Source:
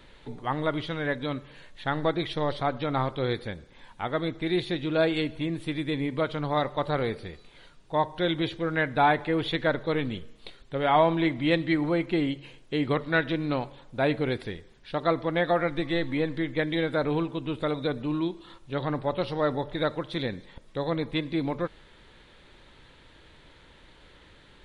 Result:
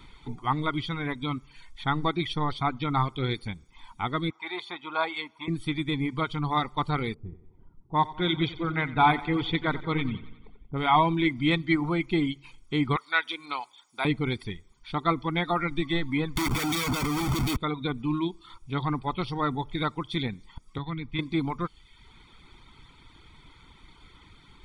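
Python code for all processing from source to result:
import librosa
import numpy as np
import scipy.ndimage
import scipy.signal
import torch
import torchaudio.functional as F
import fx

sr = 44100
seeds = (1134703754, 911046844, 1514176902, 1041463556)

y = fx.chain(x, sr, fx.highpass_res(hz=940.0, q=2.5),
    fx.tilt_eq(slope=-3.0), at=(4.3, 5.48))
y = fx.chain(y, sr, fx.env_lowpass(base_hz=410.0, full_db=-19.5),
    fx.echo_feedback(ms=90, feedback_pct=59, wet_db=-8), at=(7.14, 10.78))
y = fx.chain(y, sr, fx.highpass(hz=700.0, slope=12),
    fx.high_shelf(hz=4500.0, db=8.0), at=(12.96, 14.05))
y = fx.chain(y, sr, fx.high_shelf(hz=2500.0, db=10.5),
    fx.schmitt(flips_db=-40.5), at=(16.36, 17.57))
y = fx.chain(y, sr, fx.lowpass(hz=2900.0, slope=12),
    fx.peak_eq(hz=570.0, db=-11.5, octaves=2.4),
    fx.band_squash(depth_pct=40), at=(20.78, 21.19))
y = fx.dereverb_blind(y, sr, rt60_s=0.78)
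y = y + 0.8 * np.pad(y, (int(0.9 * sr / 1000.0), 0))[:len(y)]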